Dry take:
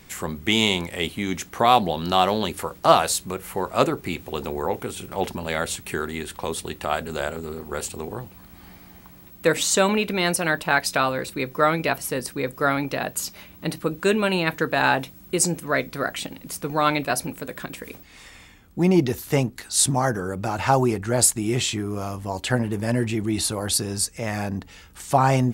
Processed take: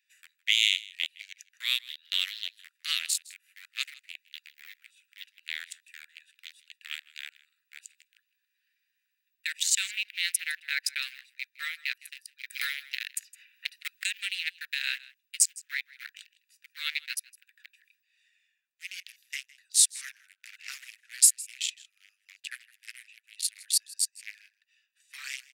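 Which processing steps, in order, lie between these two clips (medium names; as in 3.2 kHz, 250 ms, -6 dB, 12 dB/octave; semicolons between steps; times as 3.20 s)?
local Wiener filter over 41 samples; steep high-pass 1.9 kHz 48 dB/octave; delay 160 ms -21 dB; 12.50–14.87 s: three bands compressed up and down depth 100%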